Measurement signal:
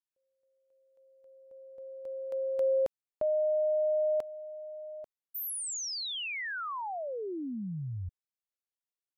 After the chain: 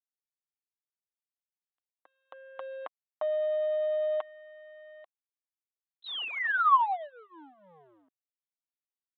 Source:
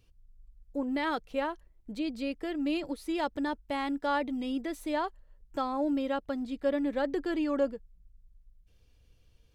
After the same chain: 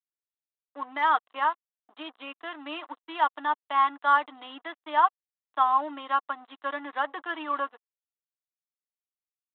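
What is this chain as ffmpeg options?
-filter_complex "[0:a]lowshelf=f=700:t=q:w=1.5:g=-11,aecho=1:1:6.5:0.36,aresample=8000,aeval=exprs='sgn(val(0))*max(abs(val(0))-0.00266,0)':c=same,aresample=44100,crystalizer=i=4.5:c=0,acrossover=split=1600[s0][s1];[s1]asoftclip=type=hard:threshold=0.0251[s2];[s0][s2]amix=inputs=2:normalize=0,highpass=f=280:w=0.5412,highpass=f=280:w=1.3066,equalizer=f=400:t=q:w=4:g=-3,equalizer=f=730:t=q:w=4:g=6,equalizer=f=1100:t=q:w=4:g=10,equalizer=f=2400:t=q:w=4:g=-10,lowpass=f=3000:w=0.5412,lowpass=f=3000:w=1.3066,volume=1.5"

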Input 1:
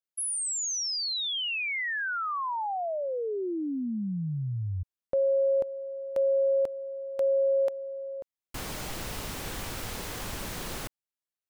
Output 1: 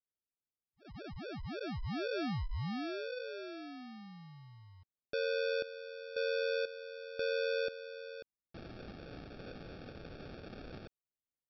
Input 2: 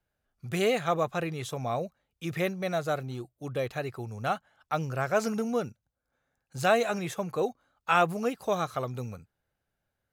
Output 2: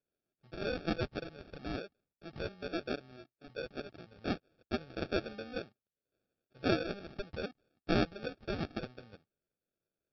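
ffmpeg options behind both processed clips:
-af "bandpass=f=1200:t=q:w=0.87:csg=0,aresample=11025,acrusher=samples=11:mix=1:aa=0.000001,aresample=44100,volume=0.596"

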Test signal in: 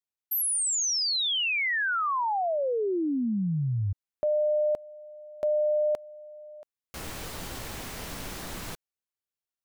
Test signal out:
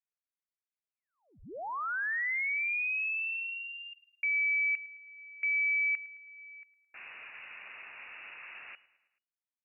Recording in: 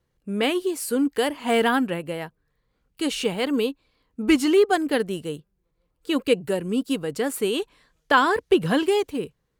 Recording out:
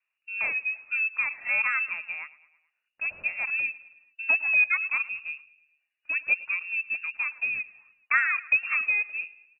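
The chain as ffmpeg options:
-filter_complex "[0:a]acrossover=split=190 2000:gain=0.141 1 0.0794[s0][s1][s2];[s0][s1][s2]amix=inputs=3:normalize=0,aeval=exprs='0.473*(cos(1*acos(clip(val(0)/0.473,-1,1)))-cos(1*PI/2))+0.00944*(cos(3*acos(clip(val(0)/0.473,-1,1)))-cos(3*PI/2))':c=same,asplit=2[s3][s4];[s4]aecho=0:1:108|216|324|432:0.1|0.056|0.0314|0.0176[s5];[s3][s5]amix=inputs=2:normalize=0,lowpass=f=2500:t=q:w=0.5098,lowpass=f=2500:t=q:w=0.6013,lowpass=f=2500:t=q:w=0.9,lowpass=f=2500:t=q:w=2.563,afreqshift=-2900,volume=0.631"

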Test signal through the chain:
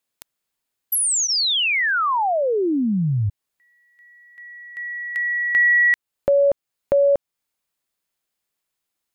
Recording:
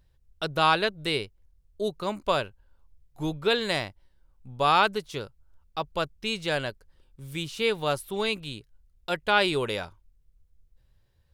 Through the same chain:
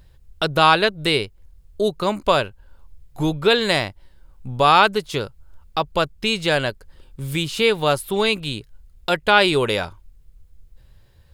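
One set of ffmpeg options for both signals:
-filter_complex "[0:a]bandreject=f=5800:w=16,asplit=2[s0][s1];[s1]acompressor=threshold=0.0126:ratio=6,volume=1.41[s2];[s0][s2]amix=inputs=2:normalize=0,volume=2"

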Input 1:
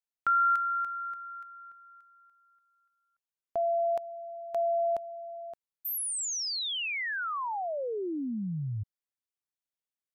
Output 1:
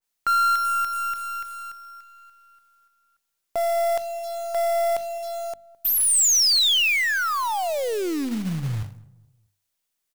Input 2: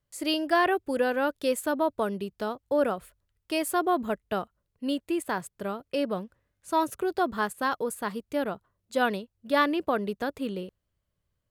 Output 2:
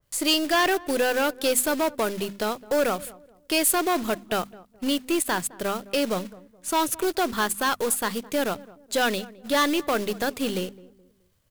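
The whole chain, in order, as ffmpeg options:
-filter_complex "[0:a]aeval=exprs='if(lt(val(0),0),0.708*val(0),val(0))':c=same,highshelf=f=3000:g=5.5,bandreject=f=50:t=h:w=6,bandreject=f=100:t=h:w=6,bandreject=f=150:t=h:w=6,bandreject=f=200:t=h:w=6,bandreject=f=250:t=h:w=6,asplit=2[s0][s1];[s1]acompressor=threshold=0.02:ratio=10:attack=0.21:release=903:knee=6:detection=rms,volume=1.41[s2];[s0][s2]amix=inputs=2:normalize=0,acrusher=bits=3:mode=log:mix=0:aa=0.000001,asoftclip=type=tanh:threshold=0.0944,asplit=2[s3][s4];[s4]adelay=212,lowpass=f=1000:p=1,volume=0.112,asplit=2[s5][s6];[s6]adelay=212,lowpass=f=1000:p=1,volume=0.36,asplit=2[s7][s8];[s8]adelay=212,lowpass=f=1000:p=1,volume=0.36[s9];[s5][s7][s9]amix=inputs=3:normalize=0[s10];[s3][s10]amix=inputs=2:normalize=0,adynamicequalizer=threshold=0.00794:dfrequency=1900:dqfactor=0.7:tfrequency=1900:tqfactor=0.7:attack=5:release=100:ratio=0.375:range=2.5:mode=boostabove:tftype=highshelf,volume=1.58"

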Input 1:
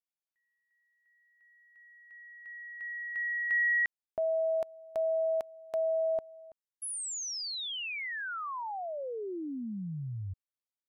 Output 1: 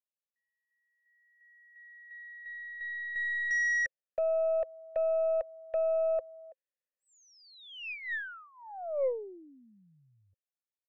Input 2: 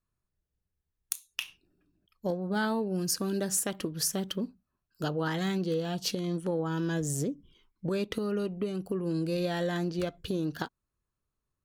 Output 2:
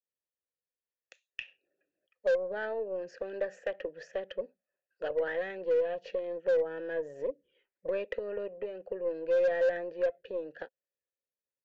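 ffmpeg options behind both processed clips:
-filter_complex "[0:a]acrossover=split=240|490|2200[s0][s1][s2][s3];[s2]dynaudnorm=f=120:g=21:m=5.62[s4];[s0][s1][s4][s3]amix=inputs=4:normalize=0,asplit=3[s5][s6][s7];[s5]bandpass=f=530:t=q:w=8,volume=1[s8];[s6]bandpass=f=1840:t=q:w=8,volume=0.501[s9];[s7]bandpass=f=2480:t=q:w=8,volume=0.355[s10];[s8][s9][s10]amix=inputs=3:normalize=0,aeval=exprs='0.075*(cos(1*acos(clip(val(0)/0.075,-1,1)))-cos(1*PI/2))+0.00299*(cos(4*acos(clip(val(0)/0.075,-1,1)))-cos(4*PI/2))':c=same,aresample=16000,aresample=44100,adynamicequalizer=threshold=0.00316:dfrequency=1500:dqfactor=0.7:tfrequency=1500:tqfactor=0.7:attack=5:release=100:ratio=0.375:range=3:mode=cutabove:tftype=highshelf"

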